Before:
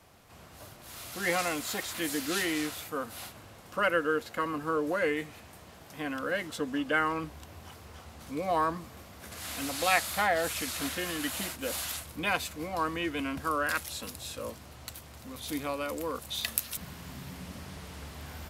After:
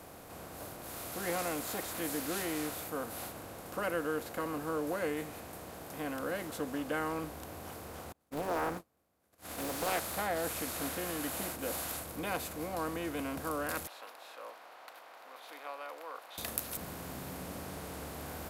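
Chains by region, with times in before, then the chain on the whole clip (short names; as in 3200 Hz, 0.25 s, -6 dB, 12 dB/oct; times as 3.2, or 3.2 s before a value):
8.12–10.17 gate -39 dBFS, range -53 dB + Doppler distortion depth 0.68 ms
13.87–16.38 HPF 790 Hz 24 dB/oct + air absorption 340 m
whole clip: per-bin compression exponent 0.6; bell 2400 Hz -8.5 dB 2.6 oct; gain -6 dB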